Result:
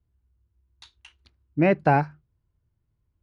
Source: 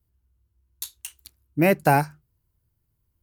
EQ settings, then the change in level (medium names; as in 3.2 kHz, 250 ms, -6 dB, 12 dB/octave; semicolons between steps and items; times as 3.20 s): brick-wall FIR low-pass 11 kHz; distance through air 290 m; 0.0 dB